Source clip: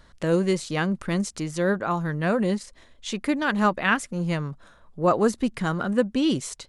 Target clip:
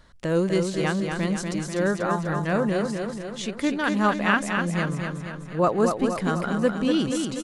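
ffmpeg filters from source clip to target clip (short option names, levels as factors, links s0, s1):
-af "aecho=1:1:219|438|657|876|1095|1314|1533|1752:0.562|0.321|0.183|0.104|0.0594|0.0338|0.0193|0.011,atempo=0.9,volume=0.891"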